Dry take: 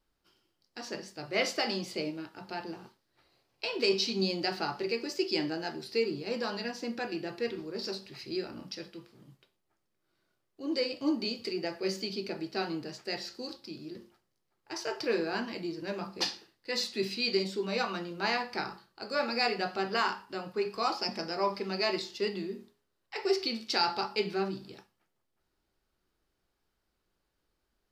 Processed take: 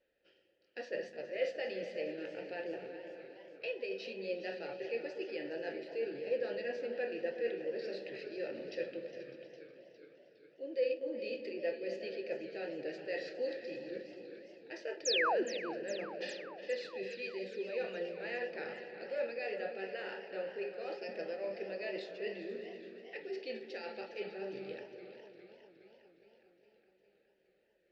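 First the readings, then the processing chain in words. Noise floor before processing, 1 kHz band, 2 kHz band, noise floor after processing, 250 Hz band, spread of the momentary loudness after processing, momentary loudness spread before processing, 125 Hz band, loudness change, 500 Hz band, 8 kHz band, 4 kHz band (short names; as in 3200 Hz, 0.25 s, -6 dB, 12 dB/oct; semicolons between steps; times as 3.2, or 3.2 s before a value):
-80 dBFS, -11.0 dB, -6.0 dB, -72 dBFS, -10.5 dB, 13 LU, 13 LU, -15.0 dB, -7.0 dB, -3.0 dB, -5.5 dB, -12.0 dB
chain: low shelf 100 Hz +7.5 dB; reverse; compressor 12:1, threshold -40 dBFS, peak gain reduction 18.5 dB; reverse; vowel filter e; on a send: repeats that get brighter 0.121 s, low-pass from 200 Hz, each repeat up 2 oct, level -6 dB; on the sum: painted sound fall, 15.05–15.43, 310–7400 Hz -46 dBFS; air absorption 50 m; warbling echo 0.411 s, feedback 65%, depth 118 cents, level -14 dB; gain +15 dB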